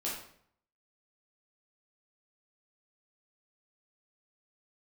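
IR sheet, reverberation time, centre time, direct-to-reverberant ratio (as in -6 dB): 0.65 s, 45 ms, -6.5 dB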